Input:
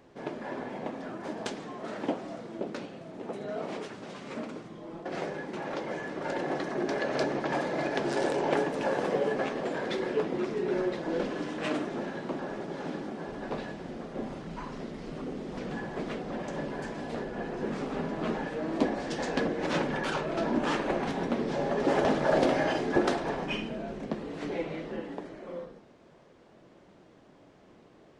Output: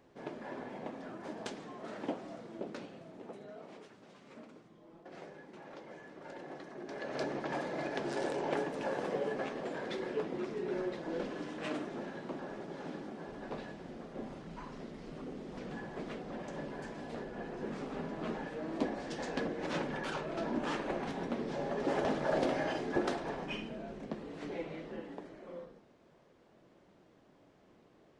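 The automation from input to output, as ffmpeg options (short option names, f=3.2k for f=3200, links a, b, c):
-af "volume=1.5dB,afade=t=out:st=2.98:d=0.6:silence=0.375837,afade=t=in:st=6.85:d=0.42:silence=0.398107"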